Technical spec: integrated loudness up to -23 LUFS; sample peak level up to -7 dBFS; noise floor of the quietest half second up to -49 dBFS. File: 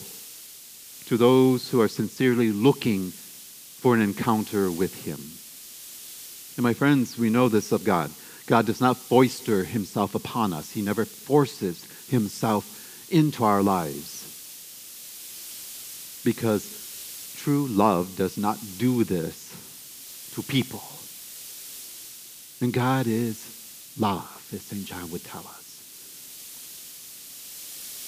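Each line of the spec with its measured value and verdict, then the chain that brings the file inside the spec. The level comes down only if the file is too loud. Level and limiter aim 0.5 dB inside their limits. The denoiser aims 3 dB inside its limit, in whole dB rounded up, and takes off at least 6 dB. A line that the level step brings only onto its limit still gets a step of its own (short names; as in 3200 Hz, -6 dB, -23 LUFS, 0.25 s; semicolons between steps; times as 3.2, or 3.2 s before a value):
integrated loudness -25.0 LUFS: OK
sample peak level -5.0 dBFS: fail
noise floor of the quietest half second -45 dBFS: fail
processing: denoiser 7 dB, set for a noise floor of -45 dBFS; limiter -7.5 dBFS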